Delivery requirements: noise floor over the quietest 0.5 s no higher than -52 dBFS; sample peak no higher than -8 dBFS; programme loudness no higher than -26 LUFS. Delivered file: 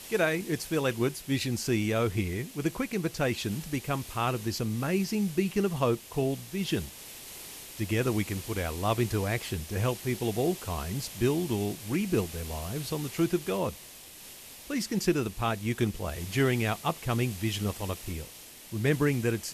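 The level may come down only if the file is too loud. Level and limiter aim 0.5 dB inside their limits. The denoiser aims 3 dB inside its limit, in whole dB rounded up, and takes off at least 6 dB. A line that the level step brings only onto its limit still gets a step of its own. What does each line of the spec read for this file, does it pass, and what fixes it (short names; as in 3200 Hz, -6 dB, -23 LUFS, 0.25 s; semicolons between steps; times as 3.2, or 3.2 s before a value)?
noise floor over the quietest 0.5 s -48 dBFS: fail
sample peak -13.0 dBFS: OK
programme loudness -30.0 LUFS: OK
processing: denoiser 7 dB, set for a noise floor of -48 dBFS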